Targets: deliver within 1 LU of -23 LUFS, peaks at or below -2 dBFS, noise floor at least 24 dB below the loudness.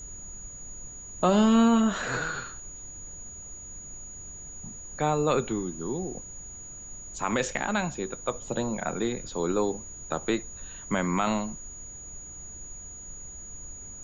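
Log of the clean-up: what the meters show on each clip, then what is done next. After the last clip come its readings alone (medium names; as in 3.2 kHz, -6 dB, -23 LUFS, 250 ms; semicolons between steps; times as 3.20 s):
steady tone 6.8 kHz; tone level -41 dBFS; noise floor -43 dBFS; noise floor target -52 dBFS; loudness -28.0 LUFS; peak level -11.0 dBFS; loudness target -23.0 LUFS
-> band-stop 6.8 kHz, Q 30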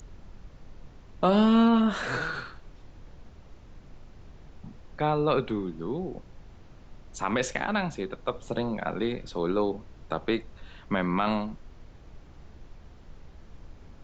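steady tone not found; noise floor -51 dBFS; noise floor target -52 dBFS
-> noise print and reduce 6 dB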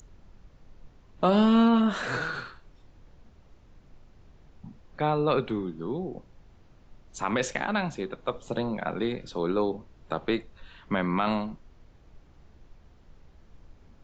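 noise floor -57 dBFS; loudness -28.0 LUFS; peak level -11.5 dBFS; loudness target -23.0 LUFS
-> trim +5 dB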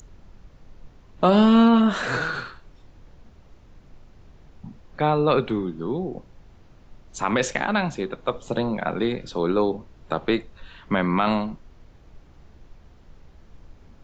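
loudness -23.0 LUFS; peak level -6.5 dBFS; noise floor -52 dBFS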